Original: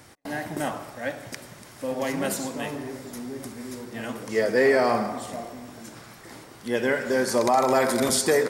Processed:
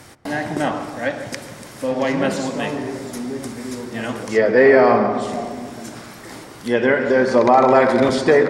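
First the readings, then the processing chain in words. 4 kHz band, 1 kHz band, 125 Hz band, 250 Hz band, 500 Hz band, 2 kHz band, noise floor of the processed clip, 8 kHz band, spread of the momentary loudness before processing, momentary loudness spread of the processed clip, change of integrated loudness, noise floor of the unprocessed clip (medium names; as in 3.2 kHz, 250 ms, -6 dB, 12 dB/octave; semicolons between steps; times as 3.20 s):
+2.0 dB, +7.5 dB, +8.0 dB, +8.0 dB, +8.0 dB, +7.0 dB, -39 dBFS, -5.0 dB, 20 LU, 20 LU, +7.5 dB, -47 dBFS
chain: filtered feedback delay 140 ms, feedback 65%, low-pass 1.1 kHz, level -10.5 dB; low-pass that closes with the level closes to 2.8 kHz, closed at -20.5 dBFS; trim +7.5 dB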